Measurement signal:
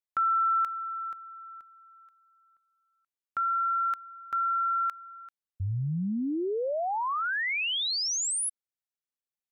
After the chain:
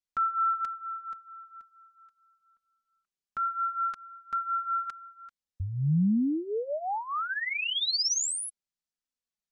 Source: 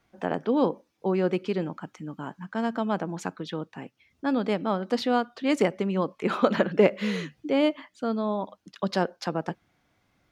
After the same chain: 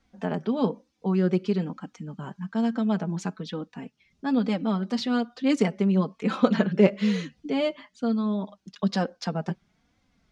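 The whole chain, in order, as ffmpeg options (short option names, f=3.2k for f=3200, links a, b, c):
-af "lowpass=5.7k,bass=f=250:g=9,treble=f=4k:g=10,flanger=delay=3.7:depth=1.6:regen=4:speed=1.1:shape=triangular"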